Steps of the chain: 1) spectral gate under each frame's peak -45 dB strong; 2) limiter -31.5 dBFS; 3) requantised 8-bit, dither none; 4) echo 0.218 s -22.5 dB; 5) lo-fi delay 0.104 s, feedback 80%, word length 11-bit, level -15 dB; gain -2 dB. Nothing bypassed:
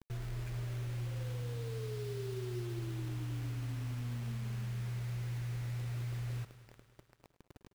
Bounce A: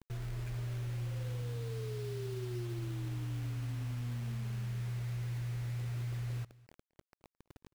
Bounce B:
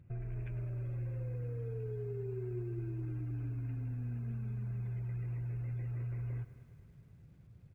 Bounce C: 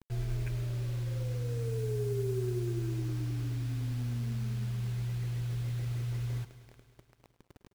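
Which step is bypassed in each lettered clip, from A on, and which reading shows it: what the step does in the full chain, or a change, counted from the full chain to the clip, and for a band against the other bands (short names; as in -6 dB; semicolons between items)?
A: 5, crest factor change -2.5 dB; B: 3, distortion -17 dB; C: 2, mean gain reduction 4.5 dB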